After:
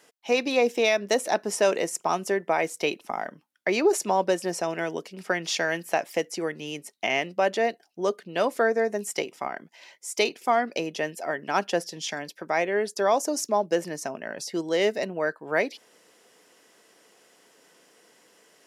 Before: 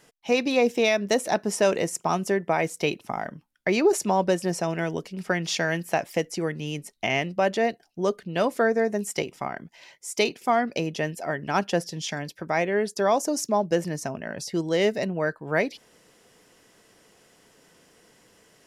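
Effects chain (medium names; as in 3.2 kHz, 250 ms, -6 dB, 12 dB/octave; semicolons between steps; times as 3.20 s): high-pass 290 Hz 12 dB/octave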